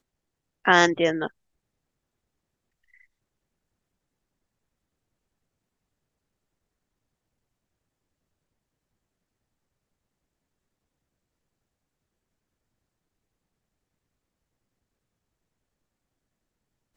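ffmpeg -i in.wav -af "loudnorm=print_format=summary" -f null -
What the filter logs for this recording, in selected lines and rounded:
Input Integrated:    -21.3 LUFS
Input True Peak:      -3.3 dBTP
Input LRA:             7.7 LU
Input Threshold:     -33.5 LUFS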